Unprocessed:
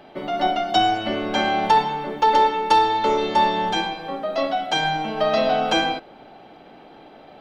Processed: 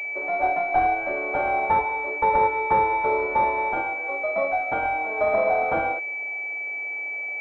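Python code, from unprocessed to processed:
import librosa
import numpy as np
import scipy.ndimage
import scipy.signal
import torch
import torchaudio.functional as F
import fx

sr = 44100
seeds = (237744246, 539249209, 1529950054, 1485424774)

y = np.minimum(x, 2.0 * 10.0 ** (-13.5 / 20.0) - x)
y = scipy.signal.sosfilt(scipy.signal.butter(4, 420.0, 'highpass', fs=sr, output='sos'), y)
y = fx.pwm(y, sr, carrier_hz=2300.0)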